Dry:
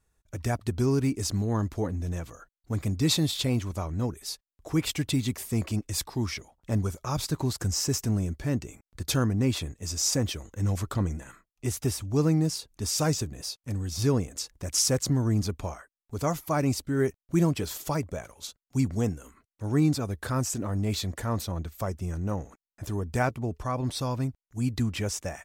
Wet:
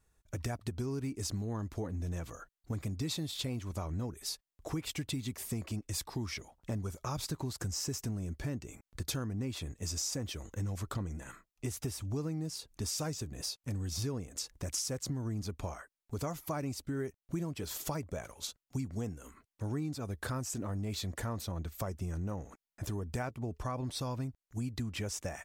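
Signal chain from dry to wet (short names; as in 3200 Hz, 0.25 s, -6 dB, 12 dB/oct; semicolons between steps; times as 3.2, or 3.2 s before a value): compressor 6:1, threshold -34 dBFS, peak gain reduction 15 dB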